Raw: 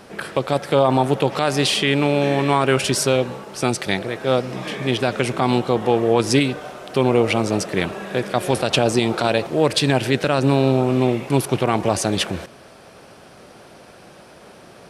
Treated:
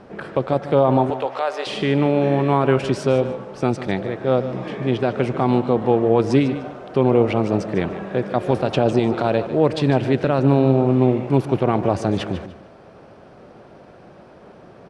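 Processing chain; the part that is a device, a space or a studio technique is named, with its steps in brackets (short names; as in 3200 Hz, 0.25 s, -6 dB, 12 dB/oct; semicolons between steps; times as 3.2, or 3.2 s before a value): 1.1–1.67 HPF 520 Hz 24 dB/oct; through cloth (LPF 6900 Hz 12 dB/oct; high shelf 2000 Hz -16 dB); feedback echo 0.149 s, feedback 26%, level -13 dB; gain +1.5 dB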